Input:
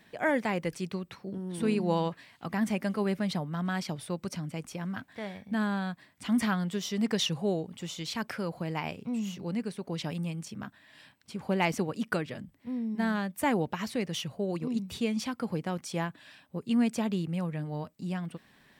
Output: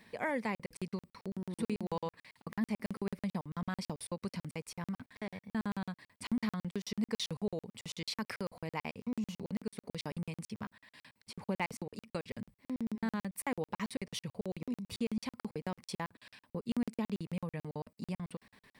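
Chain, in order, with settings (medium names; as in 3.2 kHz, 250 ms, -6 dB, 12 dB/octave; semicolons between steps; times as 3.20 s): rippled EQ curve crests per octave 0.91, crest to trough 6 dB; compression 2:1, threshold -35 dBFS, peak gain reduction 8.5 dB; crackling interface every 0.11 s, samples 2048, zero, from 0.55 s; trim -1 dB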